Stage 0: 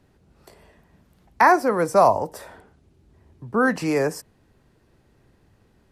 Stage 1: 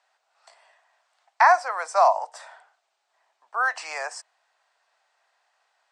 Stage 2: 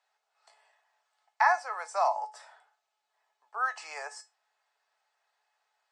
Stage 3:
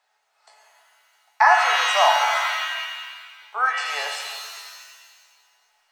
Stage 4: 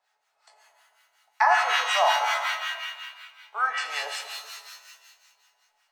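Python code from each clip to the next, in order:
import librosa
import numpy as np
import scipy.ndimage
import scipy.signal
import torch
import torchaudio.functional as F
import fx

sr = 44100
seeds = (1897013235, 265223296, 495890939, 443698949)

y1 = scipy.signal.sosfilt(scipy.signal.cheby1(4, 1.0, [680.0, 8300.0], 'bandpass', fs=sr, output='sos'), x)
y2 = fx.comb_fb(y1, sr, f0_hz=430.0, decay_s=0.21, harmonics='all', damping=0.0, mix_pct=80)
y2 = y2 * 10.0 ** (3.0 / 20.0)
y3 = fx.rev_shimmer(y2, sr, seeds[0], rt60_s=1.6, semitones=7, shimmer_db=-2, drr_db=3.5)
y3 = y3 * 10.0 ** (7.5 / 20.0)
y4 = fx.harmonic_tremolo(y3, sr, hz=5.4, depth_pct=70, crossover_hz=930.0)
y4 = y4 * 10.0 ** (-1.0 / 20.0)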